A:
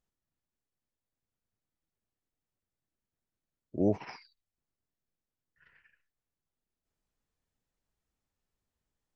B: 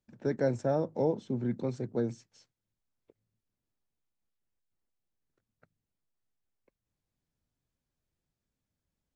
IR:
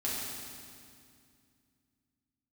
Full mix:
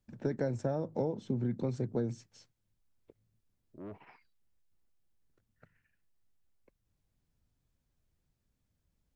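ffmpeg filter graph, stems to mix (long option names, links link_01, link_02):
-filter_complex "[0:a]lowpass=frequency=3400:width=0.5412,lowpass=frequency=3400:width=1.3066,asoftclip=type=tanh:threshold=-26dB,volume=-11dB[link_01];[1:a]lowshelf=frequency=130:gain=9.5,acompressor=threshold=-31dB:ratio=6,volume=2dB,asplit=2[link_02][link_03];[link_03]apad=whole_len=403620[link_04];[link_01][link_04]sidechaincompress=threshold=-50dB:ratio=8:attack=6.4:release=1350[link_05];[link_05][link_02]amix=inputs=2:normalize=0"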